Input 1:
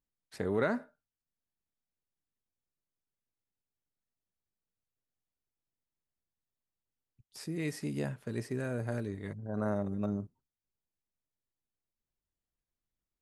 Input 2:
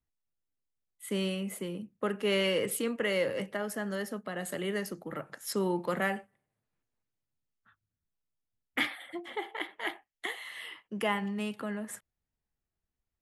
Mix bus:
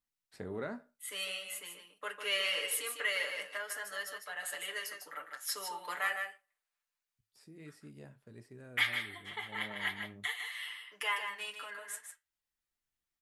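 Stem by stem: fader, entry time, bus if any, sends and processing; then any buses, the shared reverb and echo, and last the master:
-1.0 dB, 0.00 s, no send, no echo send, band-stop 6.3 kHz; auto duck -11 dB, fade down 1.60 s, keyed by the second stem
+2.5 dB, 0.00 s, no send, echo send -7 dB, high-pass 1.2 kHz 12 dB/octave; comb 6.8 ms, depth 94%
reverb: none
echo: delay 152 ms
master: flange 0.47 Hz, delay 9.4 ms, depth 5.9 ms, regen -65%

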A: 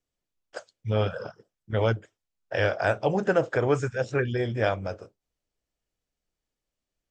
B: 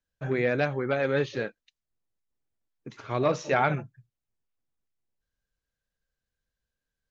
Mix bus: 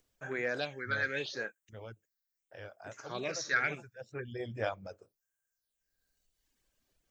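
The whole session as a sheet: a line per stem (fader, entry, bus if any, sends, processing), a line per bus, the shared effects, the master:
-8.5 dB, 0.00 s, no send, gate with hold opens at -46 dBFS; reverb removal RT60 1.2 s; upward compressor, threshold -39 dBFS; auto duck -14 dB, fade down 1.40 s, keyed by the second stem
-5.5 dB, 0.00 s, no send, peaking EQ 1.6 kHz +6 dB 0.29 oct; phase shifter stages 6, 0.79 Hz, lowest notch 730–4500 Hz; tilt EQ +4.5 dB/octave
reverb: none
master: none

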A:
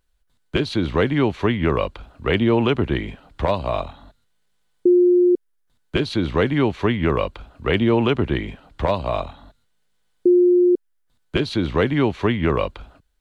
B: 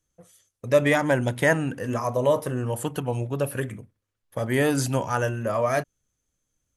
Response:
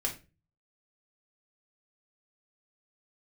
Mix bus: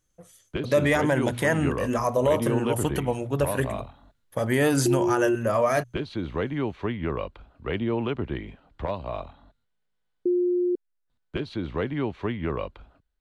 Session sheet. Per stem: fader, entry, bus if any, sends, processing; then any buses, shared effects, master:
-9.0 dB, 0.00 s, no send, treble shelf 4.5 kHz -10.5 dB
+2.0 dB, 0.00 s, no send, hum notches 60/120 Hz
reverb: none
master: peak limiter -12 dBFS, peak gain reduction 7 dB

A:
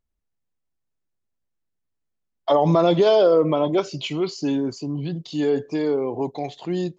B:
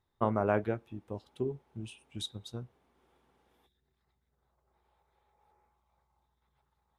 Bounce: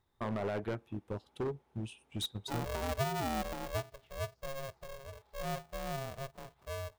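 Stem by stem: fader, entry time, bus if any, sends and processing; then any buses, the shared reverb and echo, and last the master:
-14.0 dB, 0.00 s, no send, band-pass filter 360 Hz, Q 2.5; polarity switched at an audio rate 270 Hz
+3.0 dB, 0.00 s, no send, transient shaper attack +1 dB, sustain -5 dB; peak limiter -24 dBFS, peak gain reduction 11 dB; hard clipper -34.5 dBFS, distortion -8 dB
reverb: none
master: none

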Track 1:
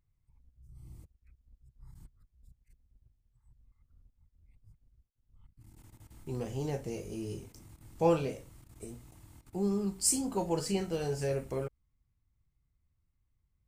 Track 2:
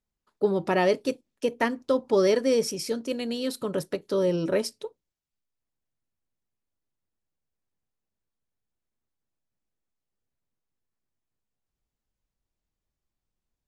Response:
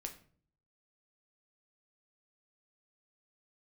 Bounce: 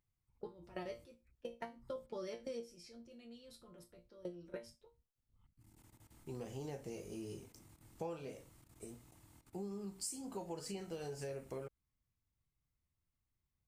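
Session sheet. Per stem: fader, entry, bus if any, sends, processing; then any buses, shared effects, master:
-4.5 dB, 0.00 s, no send, bass shelf 110 Hz -10 dB
-2.0 dB, 0.00 s, no send, level-controlled noise filter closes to 1.5 kHz, open at -23.5 dBFS; level held to a coarse grid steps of 22 dB; chord resonator A#2 fifth, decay 0.22 s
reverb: none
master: compression 6:1, threshold -41 dBFS, peak gain reduction 14 dB

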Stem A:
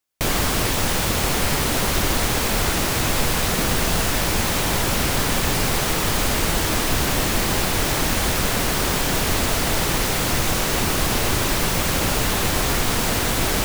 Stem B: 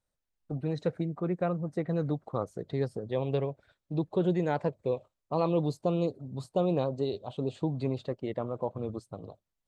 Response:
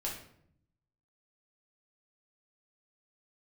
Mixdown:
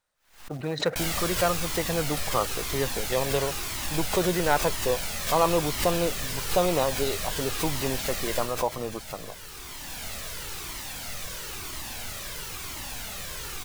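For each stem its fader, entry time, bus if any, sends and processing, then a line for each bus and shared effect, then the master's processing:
8.37 s -2.5 dB -> 8.63 s -13.5 dB, 0.75 s, send -15.5 dB, Shepard-style flanger falling 1 Hz; auto duck -9 dB, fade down 1.95 s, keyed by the second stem
+1.5 dB, 0.00 s, no send, short-mantissa float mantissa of 4-bit; peaking EQ 1.2 kHz +10.5 dB 2.7 oct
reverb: on, RT60 0.65 s, pre-delay 5 ms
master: tilt shelf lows -4.5 dB, about 1.3 kHz; swell ahead of each attack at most 130 dB/s

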